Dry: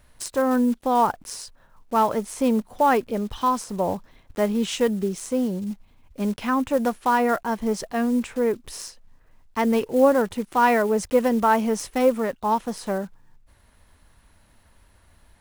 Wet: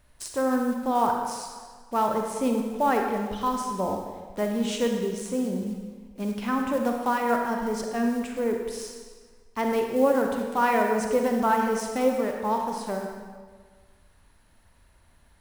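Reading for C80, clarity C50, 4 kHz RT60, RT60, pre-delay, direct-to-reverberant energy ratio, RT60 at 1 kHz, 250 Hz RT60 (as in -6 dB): 4.5 dB, 3.0 dB, 1.3 s, 1.6 s, 33 ms, 2.0 dB, 1.6 s, 1.5 s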